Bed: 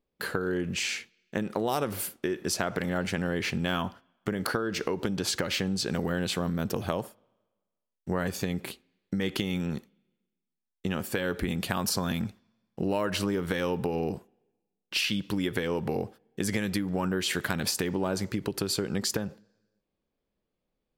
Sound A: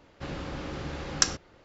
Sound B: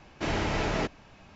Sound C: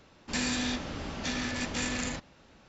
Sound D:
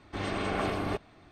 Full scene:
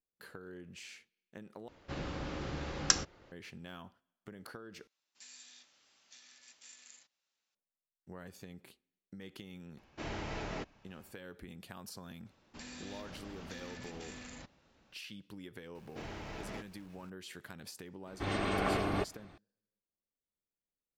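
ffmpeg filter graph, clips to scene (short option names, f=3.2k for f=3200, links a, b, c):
-filter_complex "[3:a]asplit=2[a][b];[2:a]asplit=2[c][d];[0:a]volume=-19.5dB[e];[a]aderivative[f];[b]acompressor=threshold=-34dB:ratio=6:attack=3.2:release=140:knee=1:detection=peak[g];[d]aeval=exprs='val(0)+0.5*0.00562*sgn(val(0))':c=same[h];[e]asplit=3[i][j][k];[i]atrim=end=1.684[l];[1:a]atrim=end=1.64,asetpts=PTS-STARTPTS,volume=-3.5dB[m];[j]atrim=start=3.316:end=4.874[n];[f]atrim=end=2.68,asetpts=PTS-STARTPTS,volume=-16.5dB[o];[k]atrim=start=7.546[p];[c]atrim=end=1.35,asetpts=PTS-STARTPTS,volume=-11.5dB,afade=t=in:d=0.004:c=hsin,afade=t=out:st=1.346:d=0.004:c=hsin,adelay=9770[q];[g]atrim=end=2.68,asetpts=PTS-STARTPTS,volume=-10.5dB,afade=t=in:d=0.004:c=hsin,afade=t=out:st=2.676:d=0.004:c=hsin,adelay=12260[r];[h]atrim=end=1.35,asetpts=PTS-STARTPTS,volume=-16.5dB,afade=t=in:d=0.004:c=hsin,afade=t=out:st=1.346:d=0.004:c=hsin,adelay=15750[s];[4:a]atrim=end=1.31,asetpts=PTS-STARTPTS,volume=-1.5dB,afade=t=in:d=0.004:c=hsin,afade=t=out:st=1.306:d=0.004:c=hsin,adelay=18070[t];[l][m]acrossfade=d=0.004:c1=hsin:c2=hsin[u];[u][n]acrossfade=d=0.004:c1=hsin:c2=hsin[v];[v][o]acrossfade=d=0.004:c1=hsin:c2=hsin[w];[w][p]acrossfade=d=0.004:c1=hsin:c2=hsin[x];[x][q][r][s][t]amix=inputs=5:normalize=0"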